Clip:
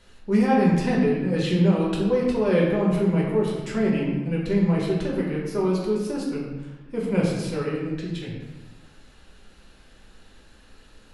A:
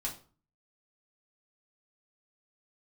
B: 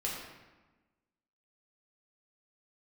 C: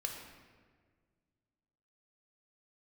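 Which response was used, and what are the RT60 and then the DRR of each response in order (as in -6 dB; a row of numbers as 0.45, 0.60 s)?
B; 0.40, 1.2, 1.7 s; -4.5, -4.5, 1.5 dB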